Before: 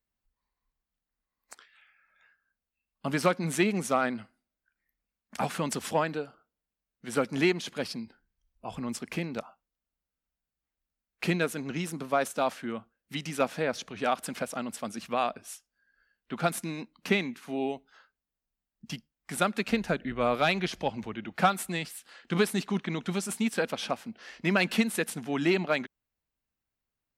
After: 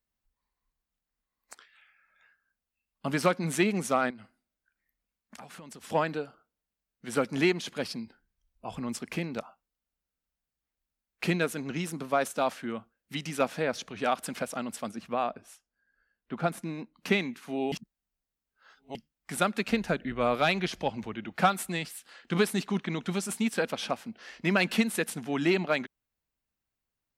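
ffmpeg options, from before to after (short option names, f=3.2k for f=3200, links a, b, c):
-filter_complex "[0:a]asettb=1/sr,asplit=3[a][b][c];[a]atrim=end=4.104[d];[b]atrim=start=4.1:end=5.9,asetpts=PTS-STARTPTS,afade=t=in:d=0.004:c=qsin,afade=t=out:st=1.796:d=0.004:c=qsin,acompressor=threshold=-43dB:ratio=10:attack=3.2:release=140:knee=1:detection=peak[e];[c]atrim=start=5.896[f];[d][e]acrossfade=d=0.004:c1=hsin:c2=qsin[g];[g][f]acrossfade=d=0.004:c1=qsin:c2=hsin,asettb=1/sr,asplit=3[h][i][j];[h]atrim=end=14.914[k];[i]atrim=start=14.91:end=16.97,asetpts=PTS-STARTPTS,afade=t=in:d=0.004:c=qsin,afade=t=out:st=2.056:d=0.004:c=qsin,highshelf=f=2.3k:g=-10.5[l];[j]atrim=start=16.966[m];[k][l]acrossfade=d=0.004:c1=hsin:c2=qsin[n];[n][m]acrossfade=d=0.004:c1=qsin:c2=hsin,asplit=3[o][p][q];[o]atrim=end=17.722[r];[p]atrim=start=17.718:end=18.952,asetpts=PTS-STARTPTS,areverse[s];[q]atrim=start=18.948[t];[r][s]acrossfade=d=0.004:c1=hsin:c2=hsin[u];[u][t]acrossfade=d=0.004:c1=hsin:c2=hsin"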